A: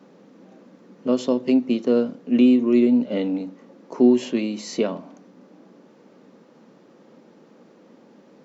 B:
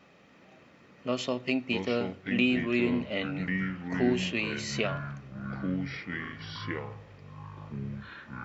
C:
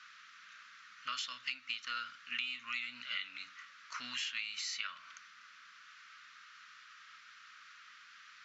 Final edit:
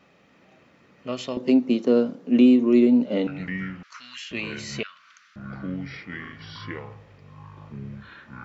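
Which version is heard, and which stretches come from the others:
B
0:01.37–0:03.27: punch in from A
0:03.83–0:04.31: punch in from C
0:04.83–0:05.36: punch in from C

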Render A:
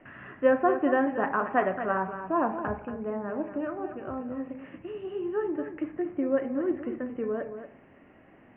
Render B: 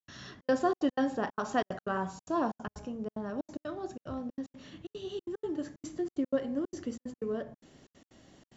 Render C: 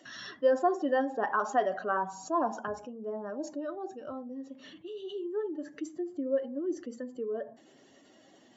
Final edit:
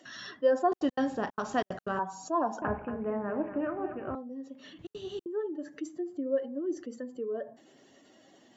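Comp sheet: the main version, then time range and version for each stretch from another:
C
0:00.72–0:01.99: punch in from B
0:02.62–0:04.15: punch in from A
0:04.79–0:05.26: punch in from B

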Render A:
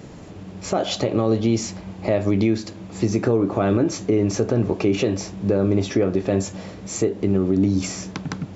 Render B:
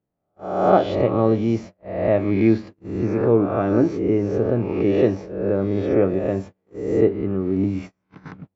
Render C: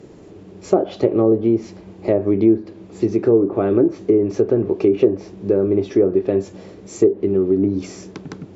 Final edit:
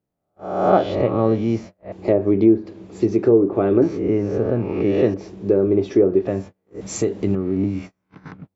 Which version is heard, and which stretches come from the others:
B
0:01.92–0:03.82: punch in from C
0:05.14–0:06.27: punch in from C
0:06.81–0:07.35: punch in from A

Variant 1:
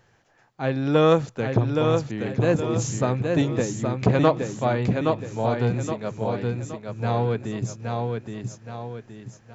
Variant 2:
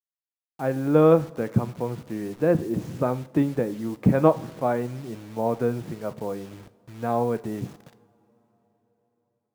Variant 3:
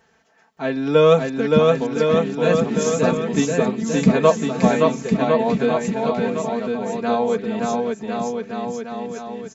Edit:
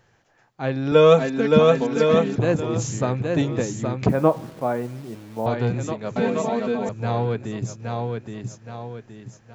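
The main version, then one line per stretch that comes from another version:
1
0:00.92–0:02.36: punch in from 3
0:04.09–0:05.46: punch in from 2
0:06.16–0:06.89: punch in from 3

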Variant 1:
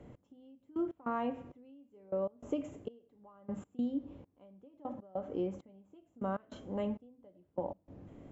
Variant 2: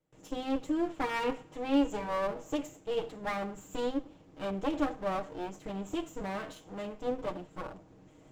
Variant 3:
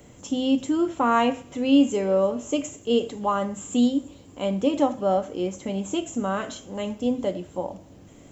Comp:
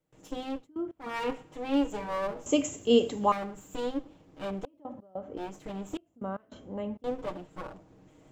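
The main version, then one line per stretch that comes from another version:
2
0:00.56–0:01.10: punch in from 1, crossfade 0.24 s
0:02.46–0:03.32: punch in from 3
0:04.65–0:05.37: punch in from 1
0:05.97–0:07.04: punch in from 1

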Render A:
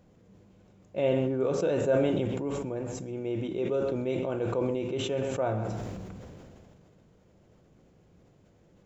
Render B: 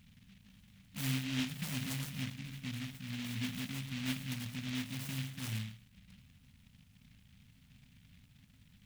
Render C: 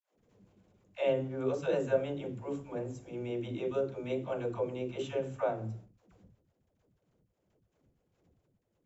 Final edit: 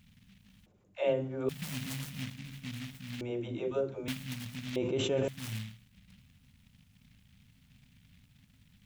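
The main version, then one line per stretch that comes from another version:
B
0:00.66–0:01.49: punch in from C
0:03.21–0:04.08: punch in from C
0:04.76–0:05.28: punch in from A

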